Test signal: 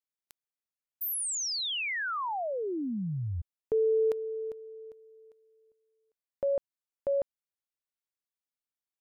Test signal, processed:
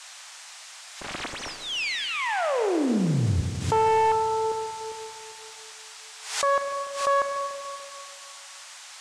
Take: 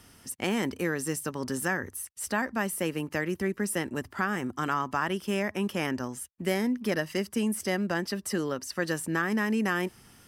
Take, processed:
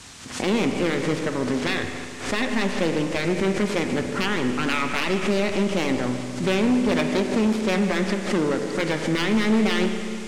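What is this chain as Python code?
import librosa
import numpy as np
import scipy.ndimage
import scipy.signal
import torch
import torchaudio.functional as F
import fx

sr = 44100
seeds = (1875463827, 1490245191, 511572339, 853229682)

p1 = fx.self_delay(x, sr, depth_ms=0.47)
p2 = fx.env_lowpass(p1, sr, base_hz=970.0, full_db=-26.0)
p3 = fx.air_absorb(p2, sr, metres=67.0)
p4 = fx.rev_spring(p3, sr, rt60_s=2.6, pass_ms=(32, 36, 48), chirp_ms=75, drr_db=6.5)
p5 = np.clip(10.0 ** (24.5 / 20.0) * p4, -1.0, 1.0) / 10.0 ** (24.5 / 20.0)
p6 = fx.high_shelf(p5, sr, hz=5000.0, db=-7.5)
p7 = p6 + fx.echo_single(p6, sr, ms=151, db=-16.5, dry=0)
p8 = fx.dmg_noise_band(p7, sr, seeds[0], low_hz=730.0, high_hz=8400.0, level_db=-53.0)
p9 = fx.pre_swell(p8, sr, db_per_s=94.0)
y = F.gain(torch.from_numpy(p9), 8.5).numpy()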